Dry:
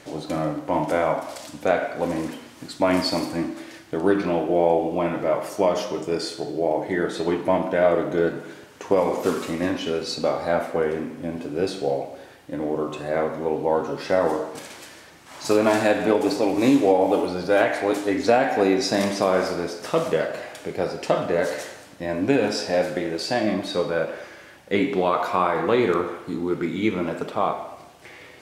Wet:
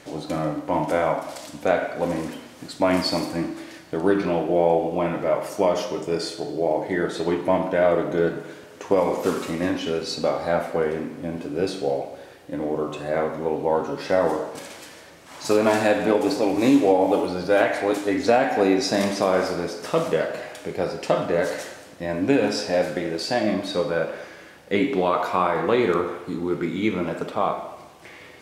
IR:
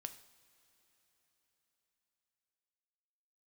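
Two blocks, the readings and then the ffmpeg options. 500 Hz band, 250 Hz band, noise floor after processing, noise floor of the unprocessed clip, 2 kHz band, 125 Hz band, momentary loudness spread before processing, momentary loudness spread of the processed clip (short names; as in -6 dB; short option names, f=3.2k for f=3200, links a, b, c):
0.0 dB, 0.0 dB, -45 dBFS, -46 dBFS, 0.0 dB, +0.5 dB, 12 LU, 12 LU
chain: -filter_complex "[0:a]asplit=2[a][b];[1:a]atrim=start_sample=2205[c];[b][c]afir=irnorm=-1:irlink=0,volume=6dB[d];[a][d]amix=inputs=2:normalize=0,volume=-7dB"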